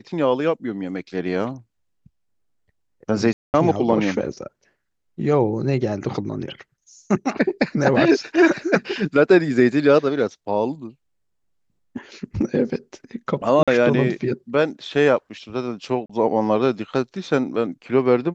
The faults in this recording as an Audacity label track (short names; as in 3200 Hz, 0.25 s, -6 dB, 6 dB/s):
3.330000	3.540000	gap 0.209 s
13.630000	13.680000	gap 46 ms
16.060000	16.090000	gap 35 ms